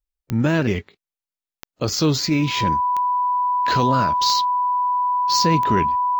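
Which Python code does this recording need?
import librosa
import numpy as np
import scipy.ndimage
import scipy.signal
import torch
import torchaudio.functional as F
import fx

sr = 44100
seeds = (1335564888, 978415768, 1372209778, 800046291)

y = fx.fix_declick_ar(x, sr, threshold=10.0)
y = fx.notch(y, sr, hz=990.0, q=30.0)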